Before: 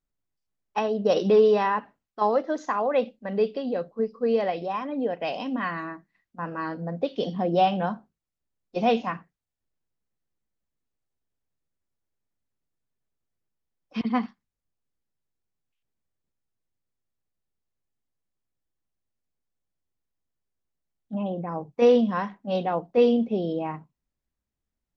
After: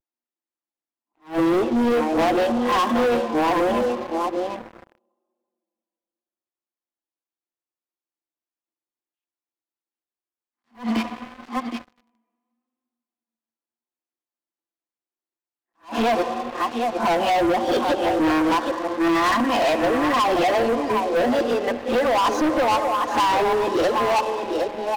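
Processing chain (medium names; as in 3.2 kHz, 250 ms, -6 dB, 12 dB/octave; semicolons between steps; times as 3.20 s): reverse the whole clip; compression 6:1, threshold -32 dBFS, peak gain reduction 17 dB; rippled Chebyshev high-pass 230 Hz, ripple 6 dB; comb 5.8 ms, depth 43%; delay 768 ms -9 dB; reverberation RT60 2.6 s, pre-delay 64 ms, DRR 12.5 dB; waveshaping leveller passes 5; vibrato 0.8 Hz 53 cents; attacks held to a fixed rise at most 240 dB/s; trim +6 dB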